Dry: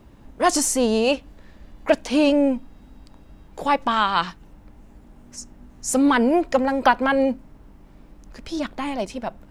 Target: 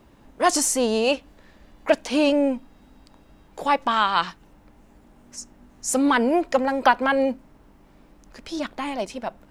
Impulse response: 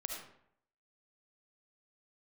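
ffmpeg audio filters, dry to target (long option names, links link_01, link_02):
-af "lowshelf=frequency=200:gain=-8.5"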